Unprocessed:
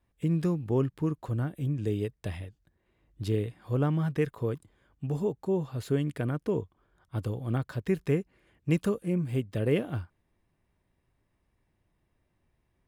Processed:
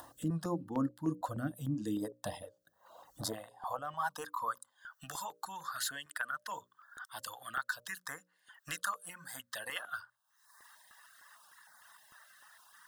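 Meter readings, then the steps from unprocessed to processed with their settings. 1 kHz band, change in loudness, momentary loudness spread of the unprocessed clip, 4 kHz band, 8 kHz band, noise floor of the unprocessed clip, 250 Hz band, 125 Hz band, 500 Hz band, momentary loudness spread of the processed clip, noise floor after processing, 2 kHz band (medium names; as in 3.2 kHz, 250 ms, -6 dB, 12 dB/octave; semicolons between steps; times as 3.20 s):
+4.5 dB, -8.5 dB, 11 LU, +4.0 dB, +10.0 dB, -76 dBFS, -9.5 dB, -15.5 dB, -15.0 dB, 22 LU, -77 dBFS, +4.0 dB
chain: high-pass sweep 320 Hz -> 1.6 kHz, 2.07–5.15 s; in parallel at -1 dB: upward compressor, threshold -28 dBFS; on the sum: bass shelf 130 Hz +4.5 dB; static phaser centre 960 Hz, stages 4; reverb removal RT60 1.7 s; reverse; compression 6:1, threshold -32 dBFS, peak gain reduction 10 dB; reverse; hum notches 60/120/180/240/300/360/420/480/540/600 Hz; step-sequenced notch 6.6 Hz 200–2800 Hz; trim +3 dB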